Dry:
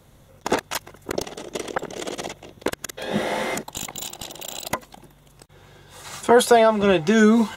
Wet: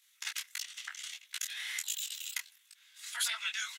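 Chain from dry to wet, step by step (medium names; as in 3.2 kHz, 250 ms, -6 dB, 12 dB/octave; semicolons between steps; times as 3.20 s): inverse Chebyshev high-pass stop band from 430 Hz, stop band 70 dB; tempo 2×; detune thickener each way 52 cents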